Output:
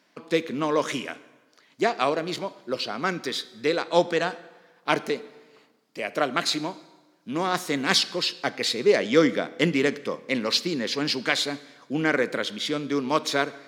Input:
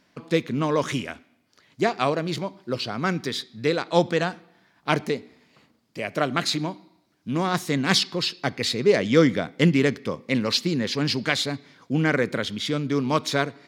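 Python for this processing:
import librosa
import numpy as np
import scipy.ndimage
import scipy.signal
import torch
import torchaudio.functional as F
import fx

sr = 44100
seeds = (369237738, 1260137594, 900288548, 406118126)

y = scipy.signal.sosfilt(scipy.signal.butter(2, 270.0, 'highpass', fs=sr, output='sos'), x)
y = fx.rev_plate(y, sr, seeds[0], rt60_s=1.3, hf_ratio=0.8, predelay_ms=0, drr_db=16.5)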